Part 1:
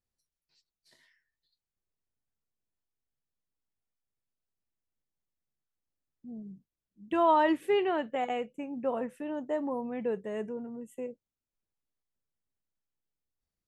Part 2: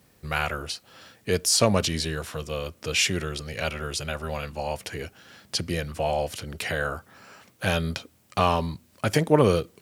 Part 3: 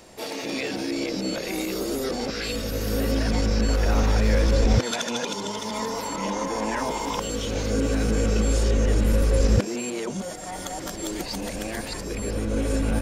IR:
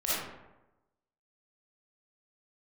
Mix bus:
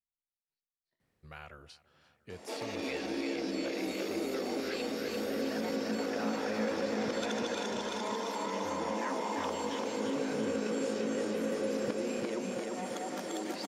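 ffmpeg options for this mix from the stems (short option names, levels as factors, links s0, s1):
-filter_complex "[0:a]highshelf=f=3700:g=-11,volume=0.119[s0];[1:a]adelay=1000,volume=0.133,asplit=2[s1][s2];[s2]volume=0.0668[s3];[2:a]highpass=f=210:w=0.5412,highpass=f=210:w=1.3066,adelay=2300,volume=1.12,asplit=2[s4][s5];[s5]volume=0.668[s6];[s3][s6]amix=inputs=2:normalize=0,aecho=0:1:344|688|1032|1376|1720|2064|2408|2752|3096:1|0.59|0.348|0.205|0.121|0.0715|0.0422|0.0249|0.0147[s7];[s0][s1][s4][s7]amix=inputs=4:normalize=0,aemphasis=mode=reproduction:type=cd,acompressor=threshold=0.00355:ratio=1.5"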